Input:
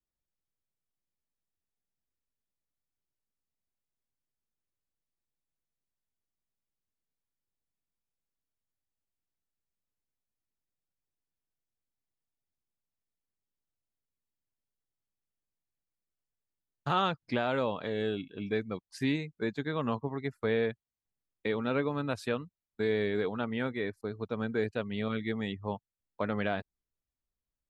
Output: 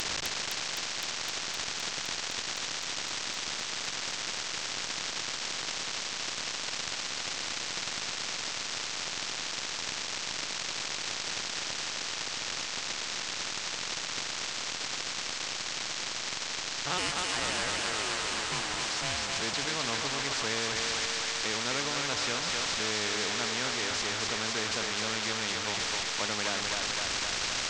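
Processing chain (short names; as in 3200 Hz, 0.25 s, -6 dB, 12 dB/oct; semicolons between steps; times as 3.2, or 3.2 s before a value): delta modulation 32 kbps, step -31 dBFS; tilt +2 dB/oct; notches 50/100/150/200 Hz; 16.97–19.34 ring modulator 1700 Hz -> 340 Hz; thinning echo 0.257 s, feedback 82%, high-pass 560 Hz, level -3 dB; spectral compressor 2:1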